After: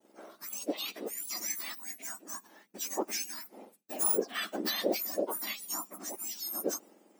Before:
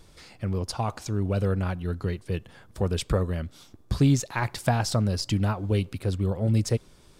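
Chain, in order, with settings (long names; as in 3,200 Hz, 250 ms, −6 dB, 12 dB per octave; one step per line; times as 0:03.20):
frequency axis turned over on the octave scale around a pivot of 1,700 Hz
downward expander −52 dBFS
level −2 dB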